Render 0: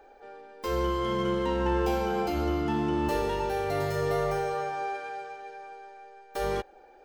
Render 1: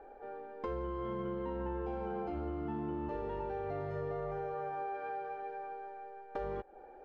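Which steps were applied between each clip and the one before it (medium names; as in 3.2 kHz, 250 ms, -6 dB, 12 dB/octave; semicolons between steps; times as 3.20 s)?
Bessel low-pass 1.2 kHz, order 2; compression 6:1, threshold -38 dBFS, peak gain reduction 14 dB; trim +2 dB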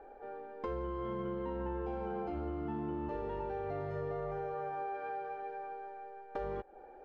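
no audible change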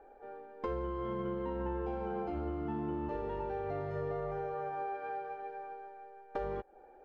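upward expansion 1.5:1, over -48 dBFS; trim +2.5 dB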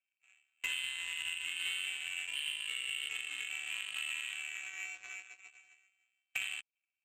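frequency inversion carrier 3.1 kHz; Chebyshev shaper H 7 -17 dB, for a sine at -22.5 dBFS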